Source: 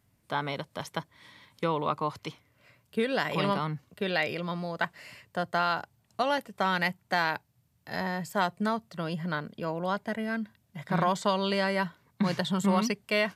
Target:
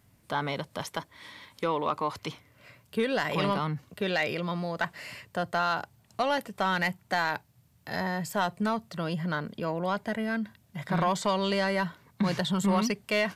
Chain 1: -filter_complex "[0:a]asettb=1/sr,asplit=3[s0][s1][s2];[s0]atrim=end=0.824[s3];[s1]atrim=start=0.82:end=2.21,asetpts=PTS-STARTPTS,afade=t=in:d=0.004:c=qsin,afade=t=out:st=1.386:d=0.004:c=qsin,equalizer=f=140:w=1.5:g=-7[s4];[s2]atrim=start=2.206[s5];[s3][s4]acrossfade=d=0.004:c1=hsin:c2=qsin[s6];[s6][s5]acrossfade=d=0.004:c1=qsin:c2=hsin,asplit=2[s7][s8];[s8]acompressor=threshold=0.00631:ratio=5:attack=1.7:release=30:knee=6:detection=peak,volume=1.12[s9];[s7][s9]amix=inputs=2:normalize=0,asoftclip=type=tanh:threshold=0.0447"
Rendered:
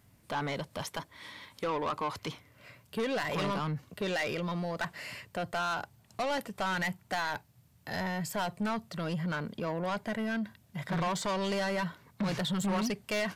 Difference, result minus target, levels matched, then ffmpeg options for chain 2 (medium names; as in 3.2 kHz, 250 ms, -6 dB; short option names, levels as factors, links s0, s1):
saturation: distortion +12 dB
-filter_complex "[0:a]asettb=1/sr,asplit=3[s0][s1][s2];[s0]atrim=end=0.824[s3];[s1]atrim=start=0.82:end=2.21,asetpts=PTS-STARTPTS,afade=t=in:d=0.004:c=qsin,afade=t=out:st=1.386:d=0.004:c=qsin,equalizer=f=140:w=1.5:g=-7[s4];[s2]atrim=start=2.206[s5];[s3][s4]acrossfade=d=0.004:c1=hsin:c2=qsin[s6];[s6][s5]acrossfade=d=0.004:c1=qsin:c2=hsin,asplit=2[s7][s8];[s8]acompressor=threshold=0.00631:ratio=5:attack=1.7:release=30:knee=6:detection=peak,volume=1.12[s9];[s7][s9]amix=inputs=2:normalize=0,asoftclip=type=tanh:threshold=0.178"